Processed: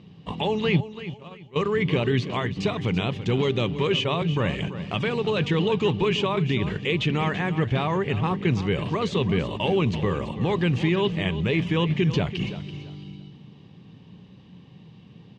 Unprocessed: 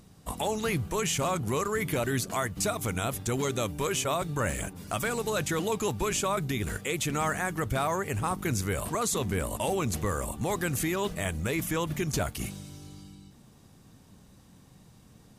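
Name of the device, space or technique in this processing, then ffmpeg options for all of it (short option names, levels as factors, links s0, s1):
guitar cabinet: -filter_complex "[0:a]asettb=1/sr,asplit=3[s0][s1][s2];[s0]atrim=end=0.804[s3];[s1]atrim=start=0.8:end=1.56,asetpts=PTS-STARTPTS,afade=t=in:d=0.004:c=qsin,afade=t=out:st=0.756:d=0.004:c=qsin,agate=range=0.0224:threshold=0.0631:ratio=16:detection=peak[s4];[s2]atrim=start=1.556[s5];[s3][s4]acrossfade=d=0.004:c1=hsin:c2=qsin[s6];[s6][s5]acrossfade=d=0.004:c1=qsin:c2=hsin,highpass=94,equalizer=f=120:t=q:w=4:g=4,equalizer=f=170:t=q:w=4:g=8,equalizer=f=400:t=q:w=4:g=4,equalizer=f=660:t=q:w=4:g=-6,equalizer=f=1400:t=q:w=4:g=-10,equalizer=f=2900:t=q:w=4:g=8,lowpass=f=3900:w=0.5412,lowpass=f=3900:w=1.3066,aecho=1:1:334|668|1002:0.224|0.0604|0.0163,volume=1.68"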